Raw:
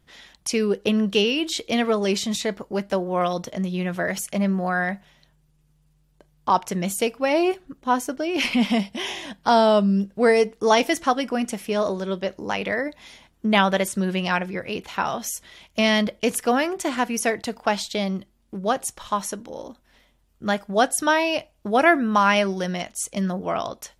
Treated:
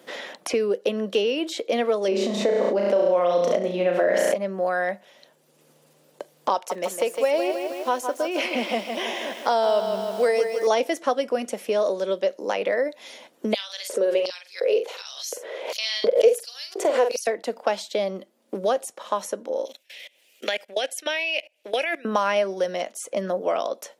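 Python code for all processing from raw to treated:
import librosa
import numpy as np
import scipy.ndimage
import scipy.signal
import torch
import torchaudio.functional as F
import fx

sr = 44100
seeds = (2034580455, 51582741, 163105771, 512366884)

y = fx.chain(x, sr, fx.lowpass(hz=1200.0, slope=6),
    fx.room_flutter(wall_m=5.9, rt60_s=0.56),
    fx.env_flatten(amount_pct=100), at=(2.08, 4.34))
y = fx.chain(y, sr, fx.low_shelf(hz=280.0, db=-11.0),
    fx.echo_crushed(ms=157, feedback_pct=55, bits=7, wet_db=-7.5), at=(6.54, 10.67))
y = fx.chain(y, sr, fx.filter_lfo_highpass(shape='square', hz=1.4, low_hz=460.0, high_hz=4400.0, q=5.5),
    fx.doubler(ms=45.0, db=-7.5),
    fx.pre_swell(db_per_s=140.0), at=(13.54, 17.27))
y = fx.chain(y, sr, fx.highpass(hz=420.0, slope=12),
    fx.high_shelf_res(hz=1700.0, db=13.0, q=3.0),
    fx.level_steps(step_db=24), at=(19.65, 22.05))
y = scipy.signal.sosfilt(scipy.signal.butter(4, 240.0, 'highpass', fs=sr, output='sos'), y)
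y = fx.peak_eq(y, sr, hz=540.0, db=12.0, octaves=0.6)
y = fx.band_squash(y, sr, depth_pct=70)
y = y * librosa.db_to_amplitude(-6.5)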